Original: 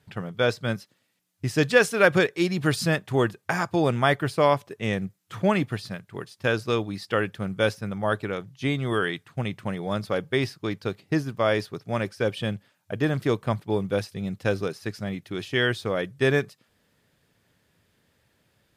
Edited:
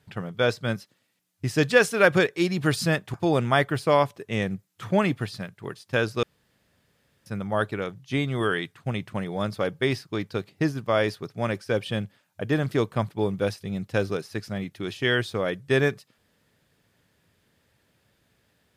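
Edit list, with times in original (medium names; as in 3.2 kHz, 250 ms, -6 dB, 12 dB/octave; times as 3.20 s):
3.14–3.65 s: delete
6.74–7.77 s: room tone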